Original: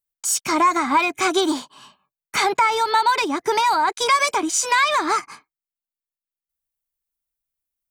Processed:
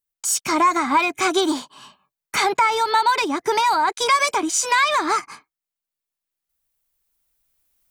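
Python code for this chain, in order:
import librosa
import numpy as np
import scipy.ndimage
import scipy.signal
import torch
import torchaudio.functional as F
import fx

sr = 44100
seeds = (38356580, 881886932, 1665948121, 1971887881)

y = fx.recorder_agc(x, sr, target_db=-17.0, rise_db_per_s=6.3, max_gain_db=30)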